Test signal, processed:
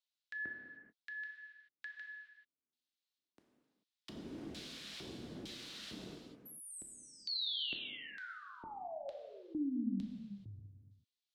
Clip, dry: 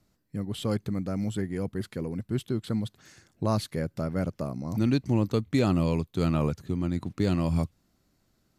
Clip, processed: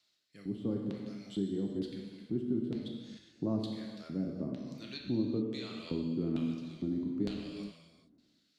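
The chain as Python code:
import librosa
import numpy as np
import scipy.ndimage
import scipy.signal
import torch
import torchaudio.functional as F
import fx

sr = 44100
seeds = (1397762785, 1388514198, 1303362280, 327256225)

y = fx.filter_lfo_bandpass(x, sr, shape='square', hz=1.1, low_hz=260.0, high_hz=3800.0, q=2.6)
y = fx.rotary(y, sr, hz=1.1)
y = fx.rev_gated(y, sr, seeds[0], gate_ms=460, shape='falling', drr_db=0.0)
y = fx.band_squash(y, sr, depth_pct=40)
y = y * 10.0 ** (1.0 / 20.0)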